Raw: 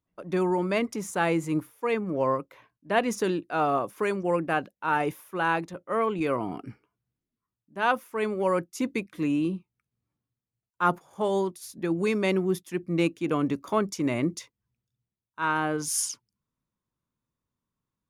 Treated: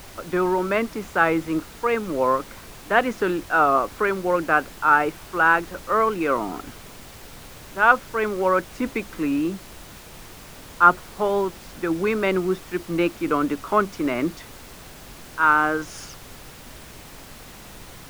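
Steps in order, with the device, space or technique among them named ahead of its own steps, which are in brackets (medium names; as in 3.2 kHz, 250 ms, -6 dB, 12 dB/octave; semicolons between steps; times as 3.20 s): horn gramophone (band-pass 220–3000 Hz; peaking EQ 1.4 kHz +10 dB 0.48 oct; wow and flutter; pink noise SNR 18 dB); trim +4 dB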